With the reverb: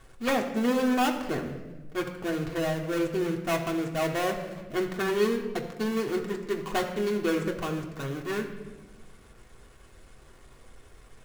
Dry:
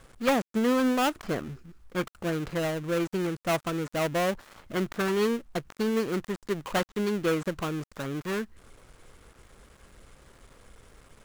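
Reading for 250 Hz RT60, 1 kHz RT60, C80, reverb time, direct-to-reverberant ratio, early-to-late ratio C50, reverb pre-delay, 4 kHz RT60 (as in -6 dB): 1.8 s, 1.0 s, 9.5 dB, 1.2 s, 0.5 dB, 8.0 dB, 3 ms, 0.85 s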